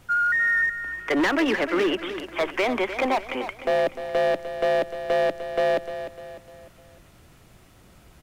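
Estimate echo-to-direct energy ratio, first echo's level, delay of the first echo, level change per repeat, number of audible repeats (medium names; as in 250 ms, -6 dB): -10.0 dB, -11.0 dB, 301 ms, -7.5 dB, 4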